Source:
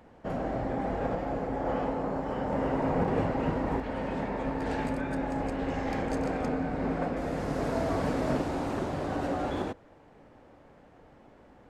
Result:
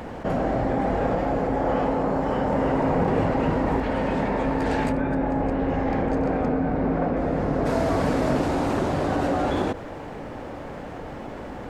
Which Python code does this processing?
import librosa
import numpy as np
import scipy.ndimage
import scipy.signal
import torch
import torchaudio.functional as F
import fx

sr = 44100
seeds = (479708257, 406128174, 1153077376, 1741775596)

y = fx.lowpass(x, sr, hz=1300.0, slope=6, at=(4.91, 7.65), fade=0.02)
y = fx.env_flatten(y, sr, amount_pct=50)
y = F.gain(torch.from_numpy(y), 4.5).numpy()